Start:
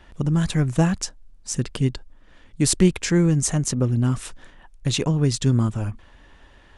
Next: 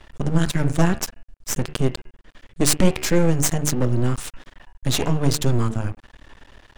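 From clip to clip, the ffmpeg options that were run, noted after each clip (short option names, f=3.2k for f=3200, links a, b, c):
-af "bandreject=f=74.53:t=h:w=4,bandreject=f=149.06:t=h:w=4,bandreject=f=223.59:t=h:w=4,bandreject=f=298.12:t=h:w=4,bandreject=f=372.65:t=h:w=4,bandreject=f=447.18:t=h:w=4,bandreject=f=521.71:t=h:w=4,bandreject=f=596.24:t=h:w=4,bandreject=f=670.77:t=h:w=4,bandreject=f=745.3:t=h:w=4,bandreject=f=819.83:t=h:w=4,bandreject=f=894.36:t=h:w=4,bandreject=f=968.89:t=h:w=4,bandreject=f=1.04342k:t=h:w=4,bandreject=f=1.11795k:t=h:w=4,bandreject=f=1.19248k:t=h:w=4,bandreject=f=1.26701k:t=h:w=4,bandreject=f=1.34154k:t=h:w=4,bandreject=f=1.41607k:t=h:w=4,bandreject=f=1.4906k:t=h:w=4,bandreject=f=1.56513k:t=h:w=4,bandreject=f=1.63966k:t=h:w=4,bandreject=f=1.71419k:t=h:w=4,bandreject=f=1.78872k:t=h:w=4,bandreject=f=1.86325k:t=h:w=4,bandreject=f=1.93778k:t=h:w=4,bandreject=f=2.01231k:t=h:w=4,bandreject=f=2.08684k:t=h:w=4,bandreject=f=2.16137k:t=h:w=4,bandreject=f=2.2359k:t=h:w=4,bandreject=f=2.31043k:t=h:w=4,bandreject=f=2.38496k:t=h:w=4,bandreject=f=2.45949k:t=h:w=4,bandreject=f=2.53402k:t=h:w=4,bandreject=f=2.60855k:t=h:w=4,bandreject=f=2.68308k:t=h:w=4,bandreject=f=2.75761k:t=h:w=4,bandreject=f=2.83214k:t=h:w=4,bandreject=f=2.90667k:t=h:w=4,aeval=exprs='max(val(0),0)':c=same,volume=6.5dB"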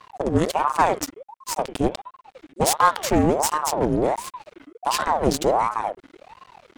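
-af "aeval=exprs='val(0)*sin(2*PI*670*n/s+670*0.6/1.4*sin(2*PI*1.4*n/s))':c=same"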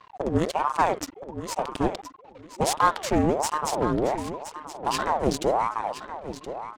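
-af "aecho=1:1:1021|2042:0.266|0.0506,adynamicsmooth=sensitivity=6.5:basefreq=5.8k,volume=-3.5dB"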